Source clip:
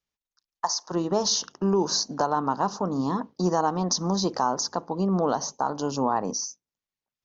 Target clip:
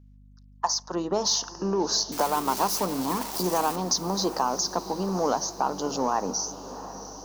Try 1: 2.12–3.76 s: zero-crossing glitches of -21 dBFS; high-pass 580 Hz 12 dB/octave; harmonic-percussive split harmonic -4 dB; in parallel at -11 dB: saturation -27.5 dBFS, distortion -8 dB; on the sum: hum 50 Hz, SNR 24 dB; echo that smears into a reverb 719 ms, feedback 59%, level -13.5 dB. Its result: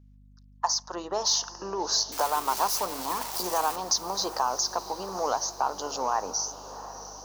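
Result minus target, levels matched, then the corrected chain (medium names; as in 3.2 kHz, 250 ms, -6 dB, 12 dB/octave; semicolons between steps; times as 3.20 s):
250 Hz band -10.0 dB
2.12–3.76 s: zero-crossing glitches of -21 dBFS; high-pass 190 Hz 12 dB/octave; harmonic-percussive split harmonic -4 dB; in parallel at -11 dB: saturation -27.5 dBFS, distortion -8 dB; on the sum: hum 50 Hz, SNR 24 dB; echo that smears into a reverb 719 ms, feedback 59%, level -13.5 dB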